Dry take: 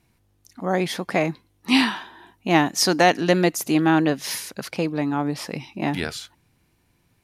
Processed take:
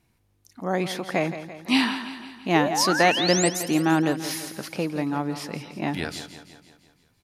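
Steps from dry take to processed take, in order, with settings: painted sound rise, 2.55–3.49 s, 400–8900 Hz -24 dBFS; on a send: feedback delay 169 ms, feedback 55%, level -12 dB; on the sum: trim -3 dB

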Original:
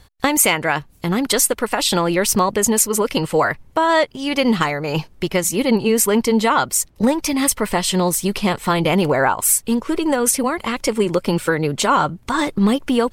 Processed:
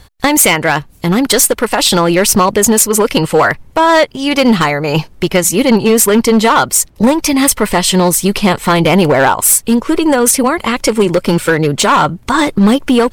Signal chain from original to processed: hard clipper -12 dBFS, distortion -15 dB; trim +8 dB

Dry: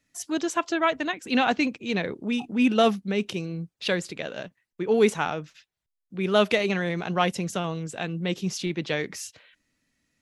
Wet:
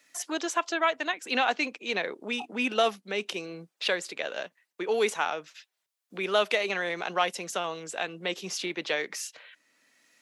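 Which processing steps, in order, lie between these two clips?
high-pass 510 Hz 12 dB/octave; three bands compressed up and down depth 40%

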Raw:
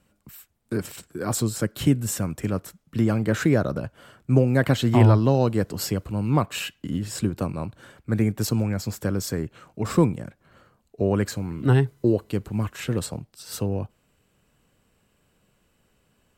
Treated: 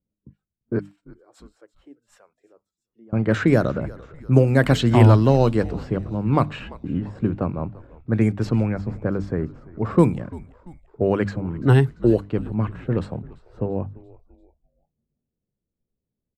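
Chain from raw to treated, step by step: 0.79–3.13 s: differentiator; hum notches 50/100/150/200/250/300 Hz; level-controlled noise filter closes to 370 Hz, open at -15 dBFS; frequency-shifting echo 341 ms, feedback 52%, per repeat -84 Hz, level -20 dB; spectral noise reduction 19 dB; trim +3.5 dB

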